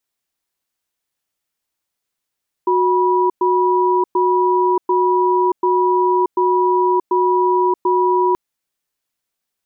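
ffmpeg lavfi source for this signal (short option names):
-f lavfi -i "aevalsrc='0.178*(sin(2*PI*366*t)+sin(2*PI*975*t))*clip(min(mod(t,0.74),0.63-mod(t,0.74))/0.005,0,1)':d=5.68:s=44100"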